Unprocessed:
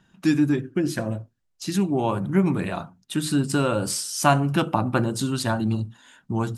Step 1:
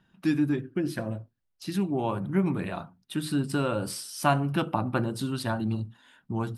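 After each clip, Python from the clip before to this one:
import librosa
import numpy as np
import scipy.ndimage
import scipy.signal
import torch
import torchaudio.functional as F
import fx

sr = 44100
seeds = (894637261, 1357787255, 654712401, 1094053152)

y = fx.peak_eq(x, sr, hz=6900.0, db=-10.5, octaves=0.54)
y = F.gain(torch.from_numpy(y), -5.0).numpy()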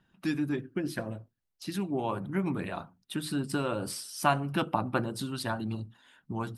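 y = fx.hpss(x, sr, part='harmonic', gain_db=-6)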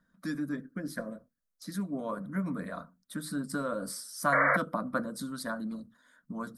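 y = fx.spec_paint(x, sr, seeds[0], shape='noise', start_s=4.32, length_s=0.25, low_hz=470.0, high_hz=2300.0, level_db=-22.0)
y = fx.fixed_phaser(y, sr, hz=550.0, stages=8)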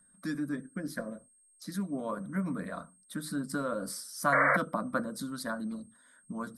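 y = x + 10.0 ** (-62.0 / 20.0) * np.sin(2.0 * np.pi * 8500.0 * np.arange(len(x)) / sr)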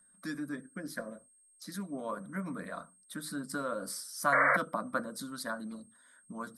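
y = fx.low_shelf(x, sr, hz=320.0, db=-8.0)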